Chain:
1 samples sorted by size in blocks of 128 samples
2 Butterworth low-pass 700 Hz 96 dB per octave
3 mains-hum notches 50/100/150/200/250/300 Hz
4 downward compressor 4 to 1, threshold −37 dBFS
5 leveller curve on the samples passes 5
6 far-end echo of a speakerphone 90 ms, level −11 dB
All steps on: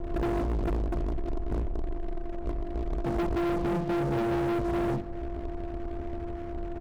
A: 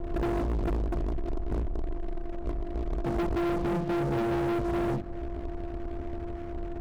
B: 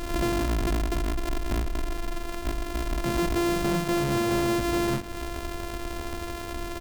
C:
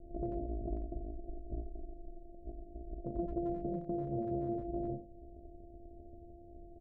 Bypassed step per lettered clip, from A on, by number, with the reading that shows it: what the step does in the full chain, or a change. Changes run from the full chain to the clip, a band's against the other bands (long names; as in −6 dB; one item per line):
6, echo-to-direct ratio −17.0 dB to none audible
2, 4 kHz band +12.0 dB
5, change in crest factor +10.5 dB